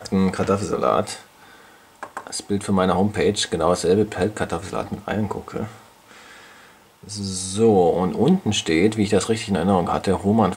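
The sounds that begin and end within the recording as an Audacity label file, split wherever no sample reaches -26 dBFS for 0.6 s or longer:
2.030000	5.660000	sound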